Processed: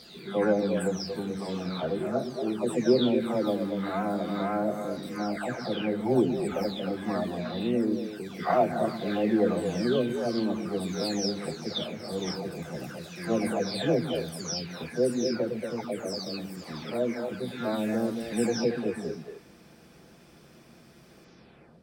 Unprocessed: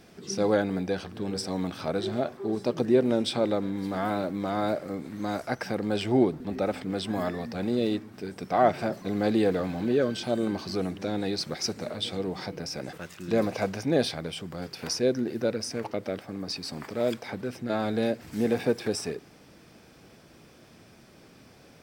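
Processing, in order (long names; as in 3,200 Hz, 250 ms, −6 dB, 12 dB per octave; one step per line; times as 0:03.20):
every frequency bin delayed by itself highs early, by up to 583 ms
echo through a band-pass that steps 115 ms, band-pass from 190 Hz, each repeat 1.4 octaves, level −2.5 dB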